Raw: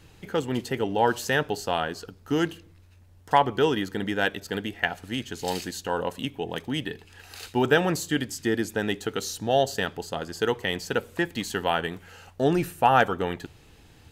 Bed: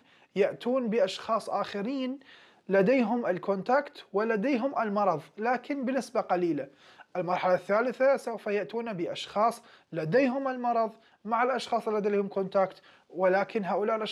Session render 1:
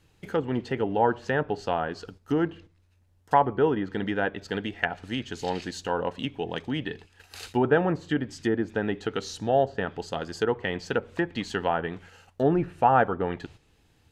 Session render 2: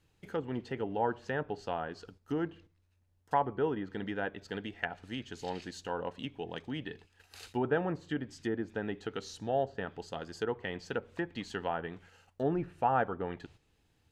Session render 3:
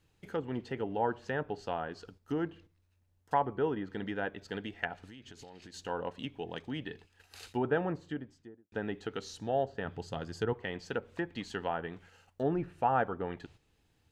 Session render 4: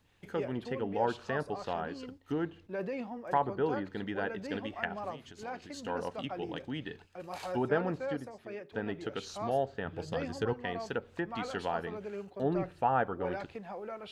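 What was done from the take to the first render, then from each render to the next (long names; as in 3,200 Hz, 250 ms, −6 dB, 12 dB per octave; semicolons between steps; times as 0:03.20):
treble cut that deepens with the level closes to 1,400 Hz, closed at −21.5 dBFS; noise gate −46 dBFS, range −10 dB
level −8.5 dB
0:05.07–0:05.74: downward compressor 12 to 1, threshold −46 dBFS; 0:07.81–0:08.72: fade out and dull; 0:09.85–0:10.53: parametric band 110 Hz +10.5 dB 1.4 octaves
mix in bed −13.5 dB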